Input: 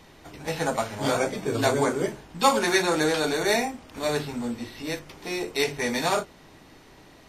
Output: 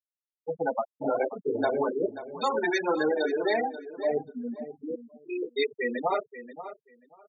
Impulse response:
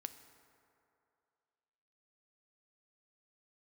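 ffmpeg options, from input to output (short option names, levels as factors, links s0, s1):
-filter_complex "[0:a]afftfilt=real='re*gte(hypot(re,im),0.158)':imag='im*gte(hypot(re,im),0.158)':win_size=1024:overlap=0.75,highpass=310,alimiter=limit=0.126:level=0:latency=1:release=166,asplit=2[s0][s1];[s1]adelay=534,lowpass=f=3800:p=1,volume=0.224,asplit=2[s2][s3];[s3]adelay=534,lowpass=f=3800:p=1,volume=0.17[s4];[s0][s2][s4]amix=inputs=3:normalize=0,volume=1.19"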